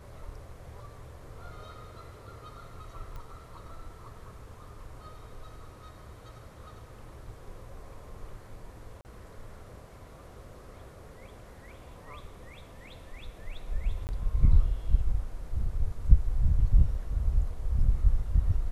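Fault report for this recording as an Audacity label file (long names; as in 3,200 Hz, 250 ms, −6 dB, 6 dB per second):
3.160000	3.160000	click −31 dBFS
9.010000	9.050000	drop-out 39 ms
14.070000	14.090000	drop-out 19 ms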